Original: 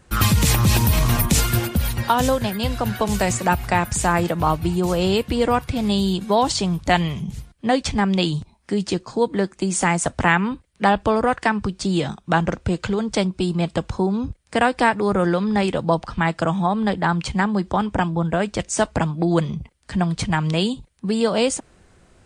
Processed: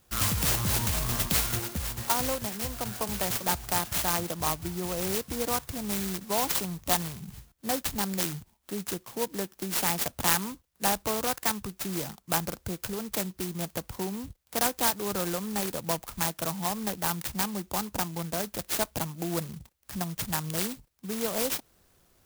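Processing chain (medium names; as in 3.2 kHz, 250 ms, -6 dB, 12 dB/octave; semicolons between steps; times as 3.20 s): tilt shelf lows -5.5 dB; sampling jitter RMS 0.14 ms; trim -8.5 dB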